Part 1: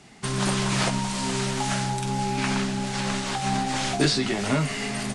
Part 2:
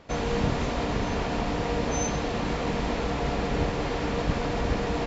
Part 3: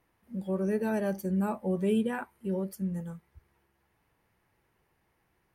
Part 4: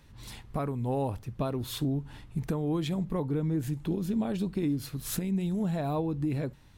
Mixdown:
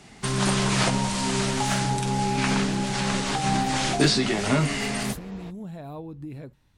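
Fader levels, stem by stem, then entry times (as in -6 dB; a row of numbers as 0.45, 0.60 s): +1.5, -16.0, -19.0, -7.5 dB; 0.00, 0.45, 0.00, 0.00 s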